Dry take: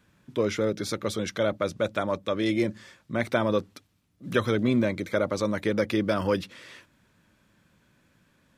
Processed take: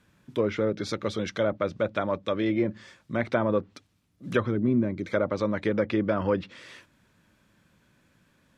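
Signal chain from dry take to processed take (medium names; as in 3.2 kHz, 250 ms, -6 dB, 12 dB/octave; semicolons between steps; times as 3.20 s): low-pass that closes with the level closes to 1.7 kHz, closed at -20.5 dBFS; time-frequency box 4.47–5.04 s, 420–4400 Hz -8 dB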